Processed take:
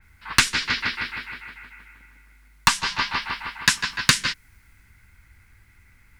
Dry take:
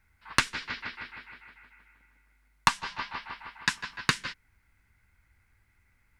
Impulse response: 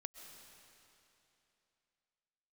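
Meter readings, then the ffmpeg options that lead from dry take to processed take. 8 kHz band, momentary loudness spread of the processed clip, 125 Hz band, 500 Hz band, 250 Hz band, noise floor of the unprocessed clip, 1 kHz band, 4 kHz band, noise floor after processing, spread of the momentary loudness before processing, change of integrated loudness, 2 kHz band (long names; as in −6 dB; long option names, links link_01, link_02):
+12.5 dB, 15 LU, +8.0 dB, +4.0 dB, +7.0 dB, −69 dBFS, +5.0 dB, +11.0 dB, −56 dBFS, 17 LU, +9.0 dB, +8.5 dB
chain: -filter_complex "[0:a]equalizer=frequency=670:width=0.94:gain=-5.5,asplit=2[link_01][link_02];[link_02]alimiter=limit=-13.5dB:level=0:latency=1:release=476,volume=-2dB[link_03];[link_01][link_03]amix=inputs=2:normalize=0,asoftclip=type=tanh:threshold=-14dB,adynamicequalizer=threshold=0.00631:dfrequency=4000:dqfactor=0.7:tfrequency=4000:tqfactor=0.7:attack=5:release=100:ratio=0.375:range=3:mode=boostabove:tftype=highshelf,volume=8dB"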